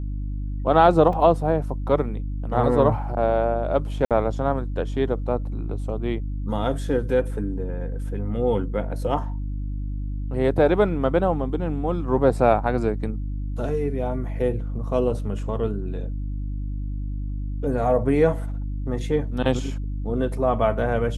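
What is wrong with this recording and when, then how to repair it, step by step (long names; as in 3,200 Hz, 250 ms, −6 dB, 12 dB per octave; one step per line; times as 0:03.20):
mains hum 50 Hz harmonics 6 −28 dBFS
0:01.13: drop-out 2.8 ms
0:04.05–0:04.11: drop-out 57 ms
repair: hum removal 50 Hz, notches 6
repair the gap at 0:01.13, 2.8 ms
repair the gap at 0:04.05, 57 ms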